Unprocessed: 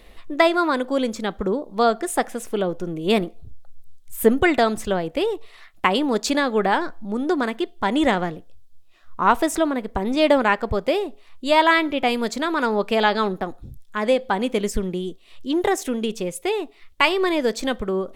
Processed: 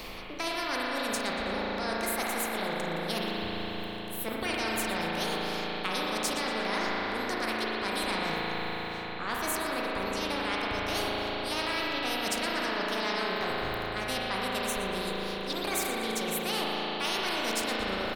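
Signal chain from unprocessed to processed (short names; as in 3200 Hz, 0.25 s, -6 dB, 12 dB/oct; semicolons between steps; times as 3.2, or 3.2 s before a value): reverse; compressor, threshold -32 dBFS, peak gain reduction 20.5 dB; reverse; formant shift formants +3 st; feedback echo 0.118 s, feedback 40%, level -17 dB; spring tank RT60 3.8 s, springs 36 ms, chirp 30 ms, DRR -4 dB; spectral compressor 2:1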